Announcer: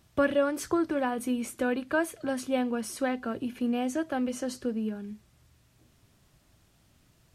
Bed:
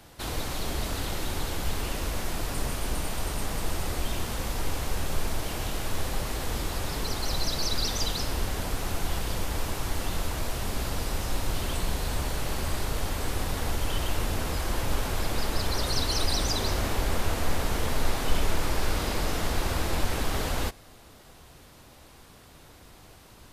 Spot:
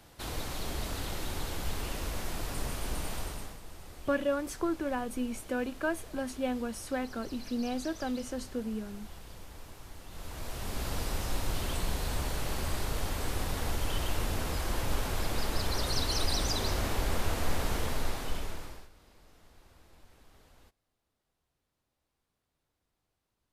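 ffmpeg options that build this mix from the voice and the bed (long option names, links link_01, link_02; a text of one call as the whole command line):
ffmpeg -i stem1.wav -i stem2.wav -filter_complex "[0:a]adelay=3900,volume=-4.5dB[link_01];[1:a]volume=9.5dB,afade=type=out:start_time=3.15:duration=0.44:silence=0.223872,afade=type=in:start_time=10.08:duration=0.87:silence=0.188365,afade=type=out:start_time=17.72:duration=1.17:silence=0.0398107[link_02];[link_01][link_02]amix=inputs=2:normalize=0" out.wav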